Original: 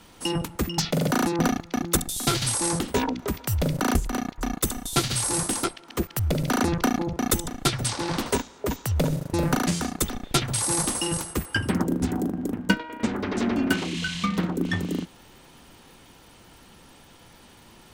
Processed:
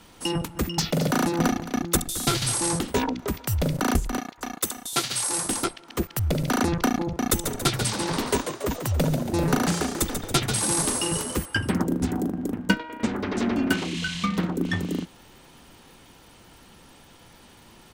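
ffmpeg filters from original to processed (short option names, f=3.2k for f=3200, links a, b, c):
-filter_complex "[0:a]asplit=3[a][b][c];[a]afade=t=out:st=0.55:d=0.02[d];[b]aecho=1:1:218:0.2,afade=t=in:st=0.55:d=0.02,afade=t=out:st=2.76:d=0.02[e];[c]afade=t=in:st=2.76:d=0.02[f];[d][e][f]amix=inputs=3:normalize=0,asettb=1/sr,asplit=3[g][h][i];[g]atrim=end=4.194[j];[h]atrim=start=4.19:end=5.45,asetpts=PTS-STARTPTS,afade=t=in:d=0.004:c=qsin,afade=t=out:st=1.256:d=0.004:c=qsin,highpass=f=500:p=1[k];[i]atrim=start=5.446[l];[j][k]acrossfade=d=0.004:c1=hsin:c2=qsin[m];[m][l]acrossfade=d=0.004:c1=qsin:c2=hsin,asplit=3[n][o][p];[n]afade=t=out:st=7.43:d=0.02[q];[o]asplit=7[r][s][t][u][v][w][x];[s]adelay=140,afreqshift=83,volume=-7.5dB[y];[t]adelay=280,afreqshift=166,volume=-13.7dB[z];[u]adelay=420,afreqshift=249,volume=-19.9dB[aa];[v]adelay=560,afreqshift=332,volume=-26.1dB[ab];[w]adelay=700,afreqshift=415,volume=-32.3dB[ac];[x]adelay=840,afreqshift=498,volume=-38.5dB[ad];[r][y][z][aa][ab][ac][ad]amix=inputs=7:normalize=0,afade=t=in:st=7.43:d=0.02,afade=t=out:st=11.44:d=0.02[ae];[p]afade=t=in:st=11.44:d=0.02[af];[q][ae][af]amix=inputs=3:normalize=0"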